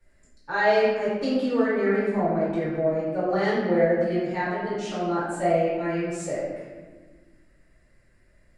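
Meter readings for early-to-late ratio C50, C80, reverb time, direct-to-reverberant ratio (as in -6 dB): -1.0 dB, 1.5 dB, 1.4 s, -10.0 dB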